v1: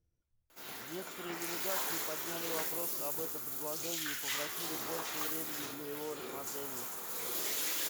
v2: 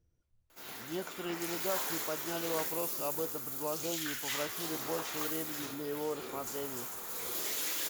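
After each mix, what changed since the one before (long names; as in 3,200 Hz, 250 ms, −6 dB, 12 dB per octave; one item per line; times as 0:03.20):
speech +5.5 dB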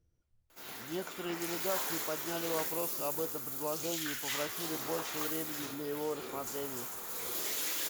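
nothing changed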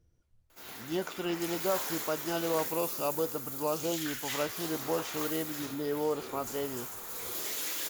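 speech +5.5 dB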